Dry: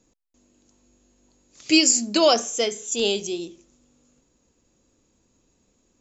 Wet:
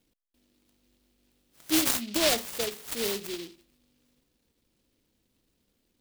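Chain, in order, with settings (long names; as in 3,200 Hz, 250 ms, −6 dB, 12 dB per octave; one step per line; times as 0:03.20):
short delay modulated by noise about 3,400 Hz, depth 0.22 ms
level −7.5 dB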